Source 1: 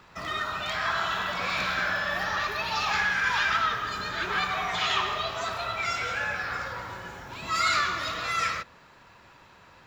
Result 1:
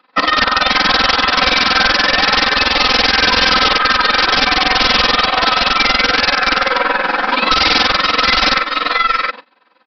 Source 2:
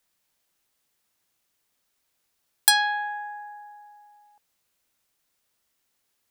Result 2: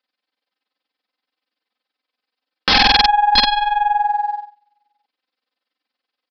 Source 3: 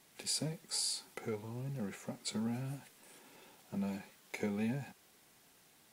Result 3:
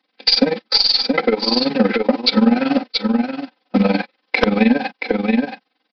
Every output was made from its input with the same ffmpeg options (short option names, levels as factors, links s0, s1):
-af "agate=range=0.0224:threshold=0.00562:ratio=16:detection=peak,tremolo=f=21:d=0.824,highpass=f=240:w=0.5412,highpass=f=240:w=1.3066,aeval=exprs='(tanh(7.08*val(0)+0.35)-tanh(0.35))/7.08':c=same,aecho=1:1:675:0.316,aresample=11025,aeval=exprs='(mod(23.7*val(0)+1,2)-1)/23.7':c=same,aresample=44100,acompressor=threshold=0.00398:ratio=5,aecho=1:1:3.9:0.96,alimiter=level_in=53.1:limit=0.891:release=50:level=0:latency=1,volume=0.891"